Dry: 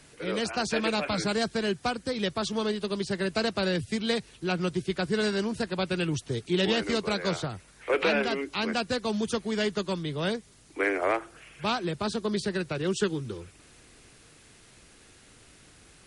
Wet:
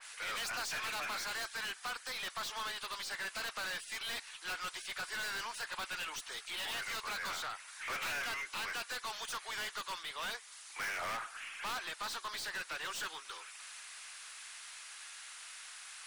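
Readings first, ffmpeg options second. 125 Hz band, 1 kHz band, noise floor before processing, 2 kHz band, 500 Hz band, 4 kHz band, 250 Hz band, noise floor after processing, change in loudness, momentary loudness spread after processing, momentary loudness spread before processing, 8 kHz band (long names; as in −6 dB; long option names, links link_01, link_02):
−27.5 dB, −7.5 dB, −56 dBFS, −5.0 dB, −22.5 dB, −6.0 dB, −29.5 dB, −54 dBFS, −10.5 dB, 10 LU, 5 LU, −1.5 dB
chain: -af "highpass=frequency=980:width=0.5412,highpass=frequency=980:width=1.3066,aeval=exprs='(tanh(158*val(0)+0.1)-tanh(0.1))/158':channel_layout=same,adynamicequalizer=threshold=0.00141:dfrequency=2700:dqfactor=0.7:tfrequency=2700:tqfactor=0.7:attack=5:release=100:ratio=0.375:range=2:mode=cutabove:tftype=highshelf,volume=8dB"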